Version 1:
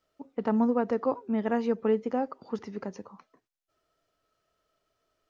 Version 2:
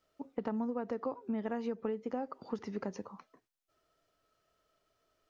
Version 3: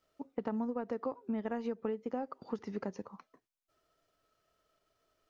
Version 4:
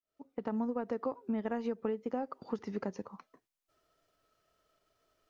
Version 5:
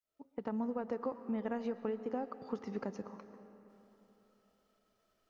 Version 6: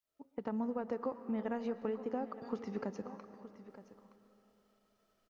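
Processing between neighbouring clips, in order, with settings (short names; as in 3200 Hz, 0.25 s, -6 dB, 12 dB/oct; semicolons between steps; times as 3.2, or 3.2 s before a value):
compressor 12:1, threshold -32 dBFS, peak gain reduction 12.5 dB
transient shaper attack 0 dB, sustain -5 dB
opening faded in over 0.58 s; gain +1.5 dB
digital reverb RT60 3.7 s, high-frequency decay 0.7×, pre-delay 80 ms, DRR 12 dB; gain -2.5 dB
echo 0.919 s -14.5 dB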